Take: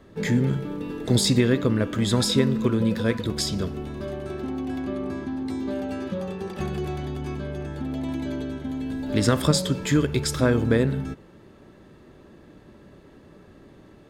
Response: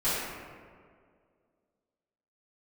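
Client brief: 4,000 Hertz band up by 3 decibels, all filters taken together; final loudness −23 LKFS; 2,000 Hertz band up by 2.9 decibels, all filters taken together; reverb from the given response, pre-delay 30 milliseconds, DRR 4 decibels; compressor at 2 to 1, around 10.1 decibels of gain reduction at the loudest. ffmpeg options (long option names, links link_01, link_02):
-filter_complex "[0:a]equalizer=frequency=2000:width_type=o:gain=3,equalizer=frequency=4000:width_type=o:gain=3,acompressor=threshold=-34dB:ratio=2,asplit=2[link_01][link_02];[1:a]atrim=start_sample=2205,adelay=30[link_03];[link_02][link_03]afir=irnorm=-1:irlink=0,volume=-15.5dB[link_04];[link_01][link_04]amix=inputs=2:normalize=0,volume=8dB"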